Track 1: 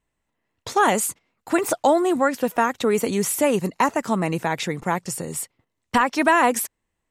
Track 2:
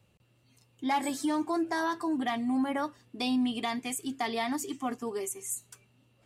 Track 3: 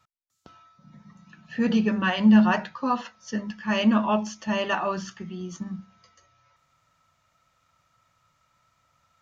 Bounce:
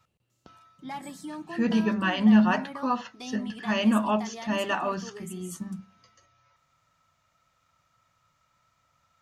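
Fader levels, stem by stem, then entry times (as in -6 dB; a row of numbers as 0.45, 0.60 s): off, -9.0 dB, -2.0 dB; off, 0.00 s, 0.00 s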